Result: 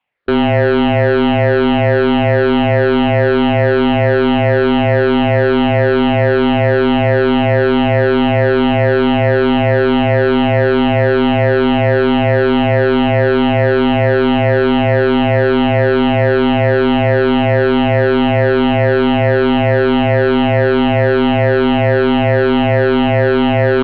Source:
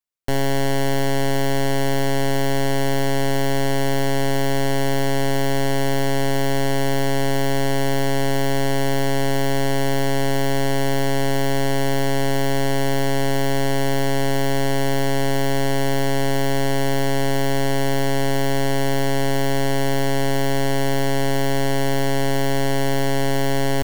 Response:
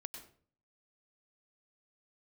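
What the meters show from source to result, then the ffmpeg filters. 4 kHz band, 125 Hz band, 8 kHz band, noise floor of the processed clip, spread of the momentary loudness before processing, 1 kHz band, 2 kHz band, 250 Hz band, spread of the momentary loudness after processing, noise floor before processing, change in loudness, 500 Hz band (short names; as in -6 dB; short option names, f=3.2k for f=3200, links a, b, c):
+4.5 dB, +8.0 dB, under -30 dB, -13 dBFS, 0 LU, +8.5 dB, +9.5 dB, +11.0 dB, 0 LU, -18 dBFS, +9.5 dB, +11.0 dB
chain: -filter_complex "[0:a]afftfilt=real='re*pow(10,11/40*sin(2*PI*(0.66*log(max(b,1)*sr/1024/100)/log(2)-(-2.3)*(pts-256)/sr)))':imag='im*pow(10,11/40*sin(2*PI*(0.66*log(max(b,1)*sr/1024/100)/log(2)-(-2.3)*(pts-256)/sr)))':win_size=1024:overlap=0.75,asplit=2[a][b];[b]highpass=f=720:p=1,volume=21dB,asoftclip=type=tanh:threshold=-10.5dB[c];[a][c]amix=inputs=2:normalize=0,lowpass=f=2.6k:p=1,volume=-6dB,highpass=f=170:t=q:w=0.5412,highpass=f=170:t=q:w=1.307,lowpass=f=3.5k:t=q:w=0.5176,lowpass=f=3.5k:t=q:w=0.7071,lowpass=f=3.5k:t=q:w=1.932,afreqshift=-160,volume=7dB"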